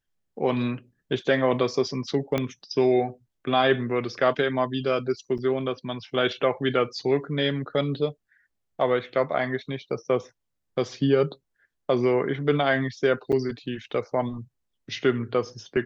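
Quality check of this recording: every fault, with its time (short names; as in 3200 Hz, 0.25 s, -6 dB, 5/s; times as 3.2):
2.38 pop -12 dBFS
5.38–5.39 gap 6.4 ms
13.32–13.33 gap 6.9 ms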